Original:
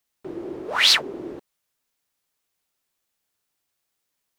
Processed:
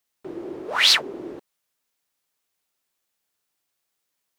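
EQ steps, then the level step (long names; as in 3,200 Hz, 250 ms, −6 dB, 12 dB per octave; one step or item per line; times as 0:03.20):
low-shelf EQ 150 Hz −5.5 dB
0.0 dB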